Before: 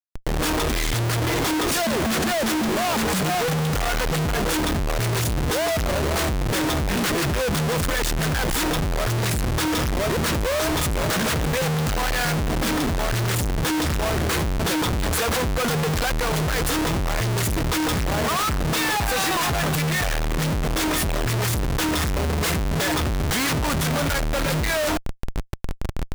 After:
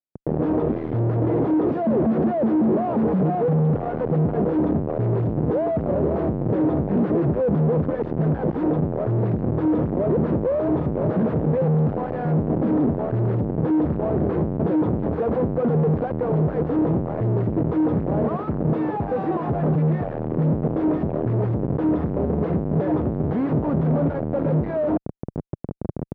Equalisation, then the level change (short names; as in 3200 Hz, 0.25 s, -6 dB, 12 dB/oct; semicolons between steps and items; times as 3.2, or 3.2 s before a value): Butterworth band-pass 270 Hz, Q 0.56; air absorption 130 m; +5.5 dB